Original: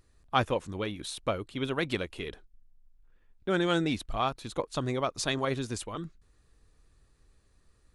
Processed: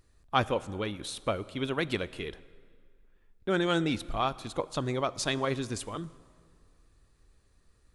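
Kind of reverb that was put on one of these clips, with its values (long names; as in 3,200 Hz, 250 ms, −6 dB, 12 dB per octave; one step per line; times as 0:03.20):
dense smooth reverb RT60 2.1 s, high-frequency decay 0.75×, DRR 17.5 dB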